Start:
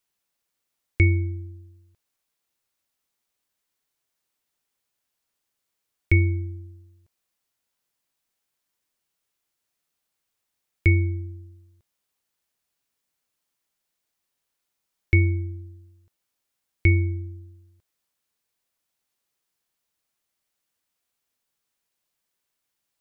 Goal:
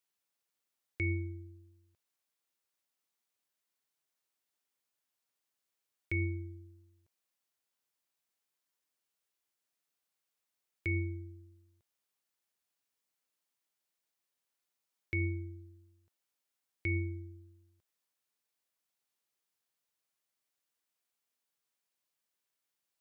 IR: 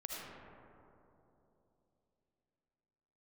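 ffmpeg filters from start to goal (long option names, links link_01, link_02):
-af "highpass=60,lowshelf=frequency=150:gain=-8,alimiter=limit=-18dB:level=0:latency=1:release=15,volume=-6.5dB"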